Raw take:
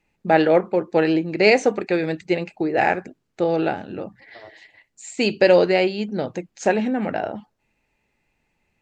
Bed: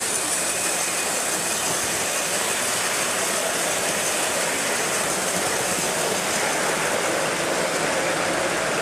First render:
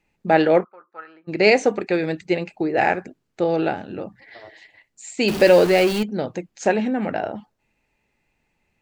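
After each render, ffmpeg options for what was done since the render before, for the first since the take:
-filter_complex "[0:a]asplit=3[a][b][c];[a]afade=t=out:st=0.63:d=0.02[d];[b]bandpass=f=1.3k:t=q:w=11,afade=t=in:st=0.63:d=0.02,afade=t=out:st=1.27:d=0.02[e];[c]afade=t=in:st=1.27:d=0.02[f];[d][e][f]amix=inputs=3:normalize=0,asettb=1/sr,asplit=3[g][h][i];[g]atrim=end=5.284[j];[h]atrim=start=5.28:end=6.03,asetpts=PTS-STARTPTS,afade=t=in:d=0.004:c=qsin,afade=t=out:st=0.746:d=0.004:c=qsin,aeval=exprs='val(0)+0.5*0.0794*sgn(val(0))':c=same[k];[i]atrim=start=6.026[l];[j][k]acrossfade=d=0.004:c1=hsin:c2=qsin[m];[m][l]acrossfade=d=0.004:c1=qsin:c2=hsin"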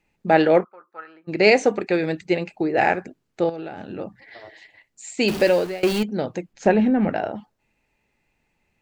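-filter_complex "[0:a]asettb=1/sr,asplit=3[a][b][c];[a]atrim=end=3.494[d];[b]atrim=start=3.49:end=3.99,asetpts=PTS-STARTPTS,afade=t=in:d=0.004:c=qsin,afade=t=out:st=0.496:d=0.004:c=qsin,acompressor=threshold=-28dB:ratio=16:attack=3.2:release=140:knee=1:detection=peak[e];[c]atrim=start=3.986[f];[d][e]acrossfade=d=0.004:c1=hsin:c2=qsin[g];[g][f]acrossfade=d=0.004:c1=qsin:c2=hsin,asettb=1/sr,asplit=3[h][i][j];[h]atrim=end=6.534[k];[i]atrim=start=6.53:end=7.1,asetpts=PTS-STARTPTS,afade=t=in:d=0.004:c=qsin,afade=t=out:st=0.566:d=0.004:c=qsin,aemphasis=mode=reproduction:type=bsi[l];[j]atrim=start=7.096[m];[k][l]acrossfade=d=0.004:c1=hsin:c2=qsin[n];[n][m]acrossfade=d=0.004:c1=qsin:c2=hsin,asplit=2[o][p];[o]atrim=end=5.83,asetpts=PTS-STARTPTS,afade=t=out:st=5.23:d=0.6:silence=0.0668344[q];[p]atrim=start=5.83,asetpts=PTS-STARTPTS,afade=t=in:d=0.004:c=hsin:silence=0.0668344[r];[q][r]concat=n=2:v=0:a=1"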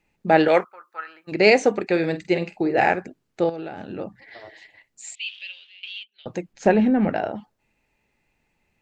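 -filter_complex "[0:a]asettb=1/sr,asplit=3[a][b][c];[a]atrim=end=0.484[d];[b]atrim=start=0.48:end=1.32,asetpts=PTS-STARTPTS,afade=t=in:d=0.004:c=qsin,afade=t=out:st=0.836:d=0.004:c=qsin,tiltshelf=f=670:g=-9[e];[c]atrim=start=1.316[f];[d][e]acrossfade=d=0.004:c1=hsin:c2=qsin[g];[g][f]acrossfade=d=0.004:c1=qsin:c2=hsin,asettb=1/sr,asplit=3[h][i][j];[h]atrim=end=1.914[k];[i]atrim=start=1.91:end=2.87,asetpts=PTS-STARTPTS,afade=t=in:d=0.004:c=qsin,afade=t=out:st=0.956:d=0.004:c=qsin,asplit=2[l][m];[m]adelay=48,volume=-12dB[n];[l][n]amix=inputs=2:normalize=0,atrim=end_sample=42336[o];[j]atrim=start=2.866[p];[k][o]acrossfade=d=0.004:c1=hsin:c2=qsin[q];[q][p]acrossfade=d=0.004:c1=qsin:c2=hsin,asettb=1/sr,asplit=3[r][s][t];[r]atrim=end=5.154[u];[s]atrim=start=5.15:end=6.26,asetpts=PTS-STARTPTS,afade=t=in:d=0.004:c=qsin,afade=t=out:st=1.106:d=0.004:c=qsin,asuperpass=centerf=3100:order=4:qfactor=3.5[v];[t]atrim=start=6.256[w];[u][v]acrossfade=d=0.004:c1=hsin:c2=qsin[x];[x][w]acrossfade=d=0.004:c1=qsin:c2=hsin"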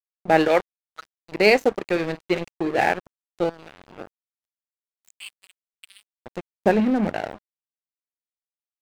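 -af "aeval=exprs='sgn(val(0))*max(abs(val(0))-0.0316,0)':c=same"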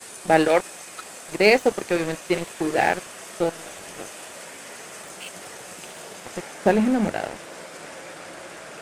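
-filter_complex "[1:a]volume=-16.5dB[a];[0:a][a]amix=inputs=2:normalize=0"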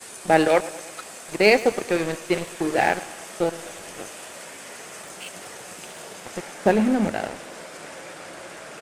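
-af "aecho=1:1:108|216|324|432|540:0.126|0.073|0.0424|0.0246|0.0142"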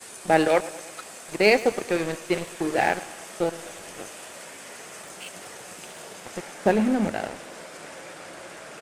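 -af "volume=-2dB"

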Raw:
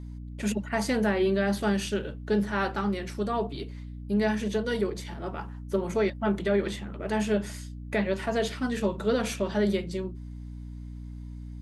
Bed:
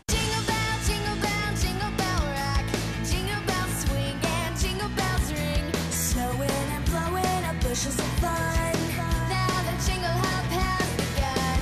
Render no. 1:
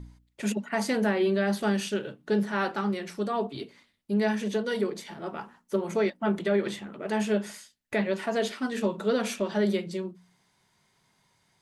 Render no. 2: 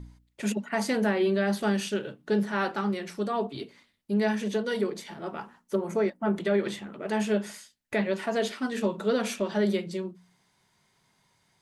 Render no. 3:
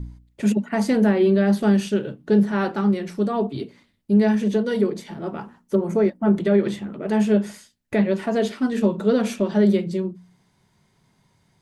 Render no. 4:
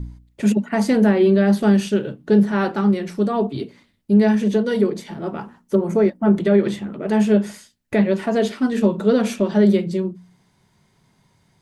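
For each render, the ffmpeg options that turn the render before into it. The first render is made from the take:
-af "bandreject=f=60:t=h:w=4,bandreject=f=120:t=h:w=4,bandreject=f=180:t=h:w=4,bandreject=f=240:t=h:w=4,bandreject=f=300:t=h:w=4"
-filter_complex "[0:a]asettb=1/sr,asplit=3[a][b][c];[a]atrim=end=5.754[d];[b]atrim=start=5.75:end=6.36,asetpts=PTS-STARTPTS,afade=t=in:d=0.004:c=qsin,afade=t=out:st=0.606:d=0.004:c=qsin,equalizer=f=3.4k:w=1:g=-9[e];[c]atrim=start=6.356[f];[d][e]acrossfade=d=0.004:c1=hsin:c2=qsin[g];[g][f]acrossfade=d=0.004:c1=qsin:c2=hsin"
-af "lowshelf=f=460:g=12"
-af "volume=2.5dB"

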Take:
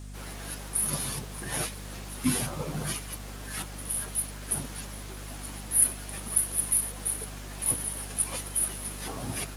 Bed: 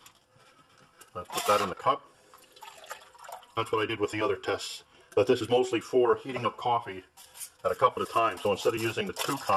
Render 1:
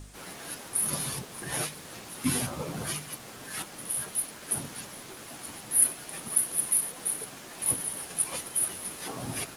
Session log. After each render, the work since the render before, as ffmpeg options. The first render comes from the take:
-af "bandreject=f=50:t=h:w=4,bandreject=f=100:t=h:w=4,bandreject=f=150:t=h:w=4,bandreject=f=200:t=h:w=4,bandreject=f=250:t=h:w=4"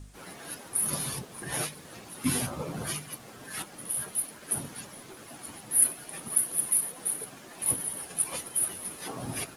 -af "afftdn=nr=6:nf=-46"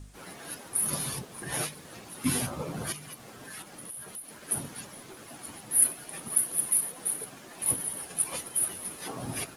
-filter_complex "[0:a]asettb=1/sr,asplit=3[a][b][c];[a]atrim=end=2.924[d];[b]atrim=start=2.92:end=4.44,asetpts=PTS-STARTPTS,afade=t=in:d=0.004:c=qsin,afade=t=out:st=1.516:d=0.004:c=qsin,acompressor=threshold=-39dB:ratio=4:attack=3.2:release=140:knee=1:detection=peak[e];[c]atrim=start=4.436[f];[d][e]acrossfade=d=0.004:c1=hsin:c2=qsin[g];[g][f]acrossfade=d=0.004:c1=qsin:c2=hsin"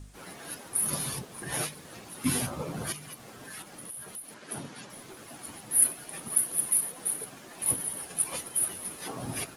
-filter_complex "[0:a]asettb=1/sr,asplit=3[a][b][c];[a]atrim=end=4.344[d];[b]atrim=start=4.34:end=4.9,asetpts=PTS-STARTPTS,afade=t=in:d=0.004:c=qsin,afade=t=out:st=0.556:d=0.004:c=qsin,highpass=130,lowpass=6.8k[e];[c]atrim=start=4.896[f];[d][e]acrossfade=d=0.004:c1=hsin:c2=qsin[g];[g][f]acrossfade=d=0.004:c1=qsin:c2=hsin"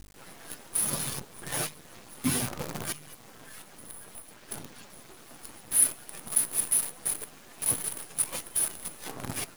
-af "acrusher=bits=6:dc=4:mix=0:aa=0.000001"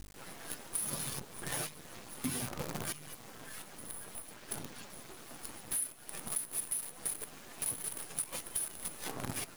-af "acompressor=threshold=-33dB:ratio=8"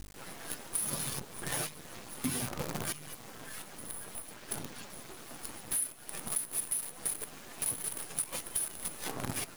-af "volume=2.5dB"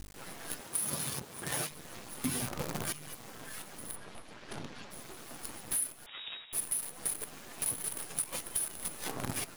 -filter_complex "[0:a]asettb=1/sr,asplit=3[a][b][c];[a]atrim=end=0.604[d];[b]atrim=start=0.6:end=1.71,asetpts=PTS-STARTPTS,afade=t=in:d=0.004:c=qsin,afade=t=out:st=1.106:d=0.004:c=qsin,highpass=57[e];[c]atrim=start=1.706[f];[d][e]acrossfade=d=0.004:c1=hsin:c2=qsin[g];[g][f]acrossfade=d=0.004:c1=qsin:c2=hsin,asplit=3[h][i][j];[h]afade=t=out:st=3.95:d=0.02[k];[i]lowpass=4.9k,afade=t=in:st=3.95:d=0.02,afade=t=out:st=4.9:d=0.02[l];[j]afade=t=in:st=4.9:d=0.02[m];[k][l][m]amix=inputs=3:normalize=0,asettb=1/sr,asplit=3[n][o][p];[n]atrim=end=6.064[q];[o]atrim=start=6.06:end=6.53,asetpts=PTS-STARTPTS,afade=t=in:d=0.004:c=qsin,afade=t=out:st=0.466:d=0.004:c=qsin,lowpass=f=3.2k:t=q:w=0.5098,lowpass=f=3.2k:t=q:w=0.6013,lowpass=f=3.2k:t=q:w=0.9,lowpass=f=3.2k:t=q:w=2.563,afreqshift=-3800[r];[p]atrim=start=6.526[s];[q][r]acrossfade=d=0.004:c1=hsin:c2=qsin[t];[t][s]acrossfade=d=0.004:c1=qsin:c2=hsin"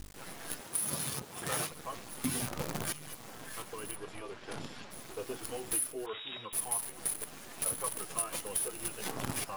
-filter_complex "[1:a]volume=-17dB[a];[0:a][a]amix=inputs=2:normalize=0"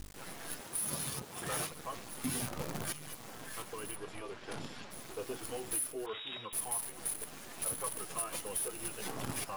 -af "asoftclip=type=tanh:threshold=-28dB"

